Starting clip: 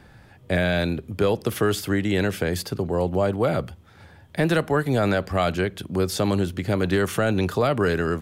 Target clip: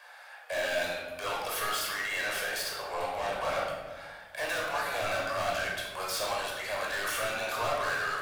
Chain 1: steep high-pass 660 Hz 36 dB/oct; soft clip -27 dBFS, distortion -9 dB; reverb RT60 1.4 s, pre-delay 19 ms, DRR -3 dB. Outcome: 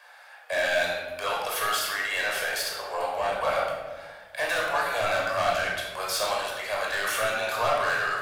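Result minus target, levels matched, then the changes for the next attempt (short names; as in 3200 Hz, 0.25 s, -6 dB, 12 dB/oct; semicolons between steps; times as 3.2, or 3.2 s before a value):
soft clip: distortion -5 dB
change: soft clip -35.5 dBFS, distortion -4 dB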